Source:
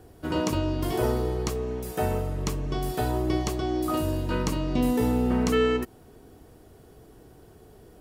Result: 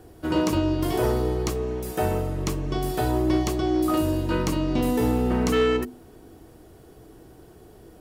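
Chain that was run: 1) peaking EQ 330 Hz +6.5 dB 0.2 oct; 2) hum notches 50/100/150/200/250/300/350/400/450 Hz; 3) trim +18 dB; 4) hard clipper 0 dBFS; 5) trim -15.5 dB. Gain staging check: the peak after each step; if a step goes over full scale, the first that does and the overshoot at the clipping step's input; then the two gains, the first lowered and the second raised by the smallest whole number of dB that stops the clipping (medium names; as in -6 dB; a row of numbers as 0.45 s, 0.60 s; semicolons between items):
-11.5 dBFS, -10.5 dBFS, +7.5 dBFS, 0.0 dBFS, -15.5 dBFS; step 3, 7.5 dB; step 3 +10 dB, step 5 -7.5 dB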